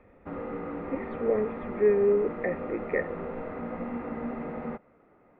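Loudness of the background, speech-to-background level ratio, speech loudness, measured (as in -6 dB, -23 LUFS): -36.5 LUFS, 8.0 dB, -28.5 LUFS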